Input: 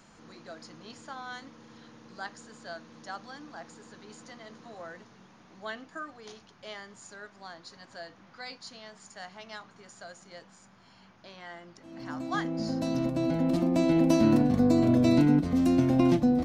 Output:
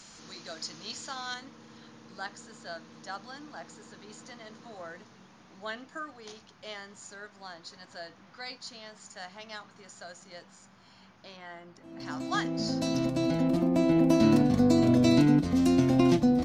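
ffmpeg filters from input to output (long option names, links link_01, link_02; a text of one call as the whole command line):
ffmpeg -i in.wav -af "asetnsamples=nb_out_samples=441:pad=0,asendcmd='1.34 equalizer g 2.5;11.37 equalizer g -4;12 equalizer g 7.5;13.48 equalizer g -3;14.2 equalizer g 6',equalizer=frequency=5600:width_type=o:width=2.1:gain=14" out.wav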